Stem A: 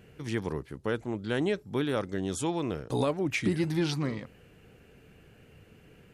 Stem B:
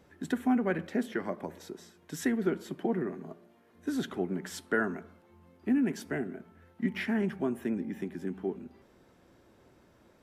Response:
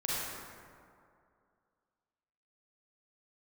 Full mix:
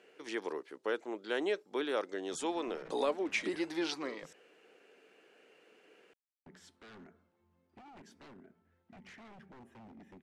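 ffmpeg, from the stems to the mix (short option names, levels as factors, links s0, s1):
-filter_complex "[0:a]highpass=f=340:w=0.5412,highpass=f=340:w=1.3066,volume=0.75[s0];[1:a]alimiter=level_in=1.19:limit=0.0631:level=0:latency=1:release=37,volume=0.841,aeval=exprs='0.0224*(abs(mod(val(0)/0.0224+3,4)-2)-1)':c=same,adelay=2100,volume=0.168,asplit=3[s1][s2][s3];[s1]atrim=end=4.33,asetpts=PTS-STARTPTS,afade=t=out:st=4.326:d=0.004:c=hsin[s4];[s2]atrim=start=4.33:end=6.46,asetpts=PTS-STARTPTS,volume=0[s5];[s3]atrim=start=6.46,asetpts=PTS-STARTPTS,afade=t=in:d=0.004:c=hsin[s6];[s4][s5][s6]concat=n=3:v=0:a=1[s7];[s0][s7]amix=inputs=2:normalize=0,lowpass=7500"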